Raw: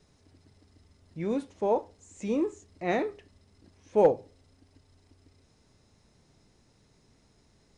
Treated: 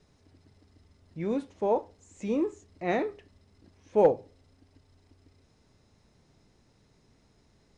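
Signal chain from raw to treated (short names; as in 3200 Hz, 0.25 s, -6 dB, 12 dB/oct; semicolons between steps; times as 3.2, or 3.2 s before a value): high shelf 7300 Hz -8 dB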